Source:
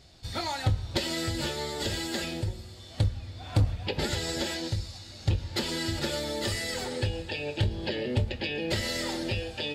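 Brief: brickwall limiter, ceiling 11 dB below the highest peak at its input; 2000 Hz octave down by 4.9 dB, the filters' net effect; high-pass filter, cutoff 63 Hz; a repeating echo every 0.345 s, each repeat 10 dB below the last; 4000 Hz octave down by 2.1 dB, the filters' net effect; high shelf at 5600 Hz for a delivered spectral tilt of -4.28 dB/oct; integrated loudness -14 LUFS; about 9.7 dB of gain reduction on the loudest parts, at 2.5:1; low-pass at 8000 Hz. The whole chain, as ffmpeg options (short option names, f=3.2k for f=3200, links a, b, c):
-af "highpass=63,lowpass=8k,equalizer=f=2k:t=o:g=-6,equalizer=f=4k:t=o:g=-3.5,highshelf=f=5.6k:g=7,acompressor=threshold=-35dB:ratio=2.5,alimiter=level_in=7.5dB:limit=-24dB:level=0:latency=1,volume=-7.5dB,aecho=1:1:345|690|1035|1380:0.316|0.101|0.0324|0.0104,volume=26dB"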